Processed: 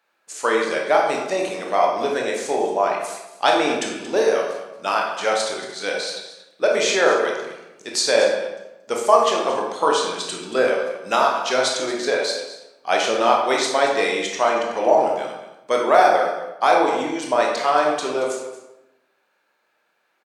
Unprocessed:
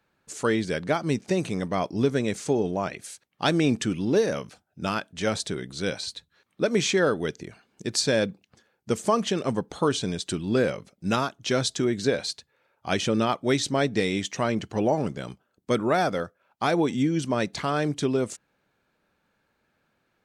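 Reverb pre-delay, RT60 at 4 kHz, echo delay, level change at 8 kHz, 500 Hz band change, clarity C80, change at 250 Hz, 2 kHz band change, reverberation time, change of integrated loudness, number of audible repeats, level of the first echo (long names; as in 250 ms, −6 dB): 19 ms, 0.75 s, 229 ms, +5.0 dB, +7.0 dB, 5.5 dB, −3.5 dB, +8.0 dB, 0.95 s, +6.0 dB, 1, −14.5 dB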